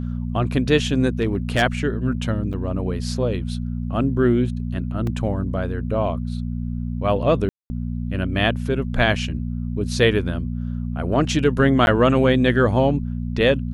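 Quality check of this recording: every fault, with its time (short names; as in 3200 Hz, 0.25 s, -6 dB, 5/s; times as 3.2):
hum 60 Hz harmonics 4 -26 dBFS
1.21–1.63 clipped -13.5 dBFS
2.53–2.54 gap 6.5 ms
5.07 gap 2.6 ms
7.49–7.7 gap 0.21 s
11.86–11.87 gap 11 ms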